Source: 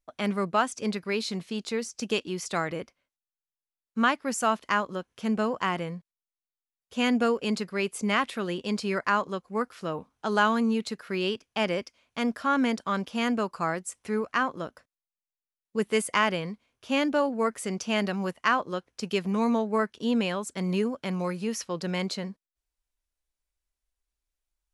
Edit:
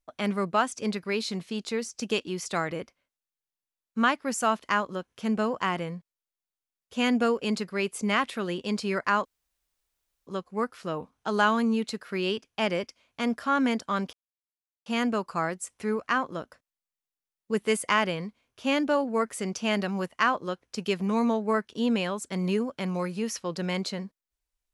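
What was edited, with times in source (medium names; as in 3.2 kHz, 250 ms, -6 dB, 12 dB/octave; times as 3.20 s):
9.25 s: insert room tone 1.02 s
13.11 s: insert silence 0.73 s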